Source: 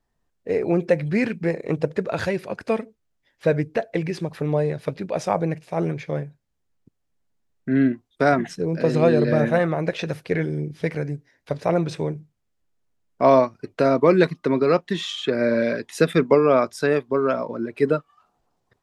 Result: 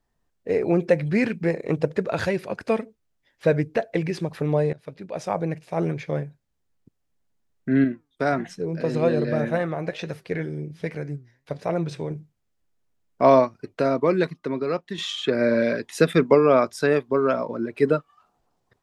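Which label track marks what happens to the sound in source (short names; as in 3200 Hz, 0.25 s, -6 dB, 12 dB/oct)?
4.730000	6.240000	fade in equal-power, from -17.5 dB
7.840000	12.110000	flange 1.3 Hz, delay 4.3 ms, depth 4.4 ms, regen +87%
13.300000	14.980000	fade out quadratic, to -7.5 dB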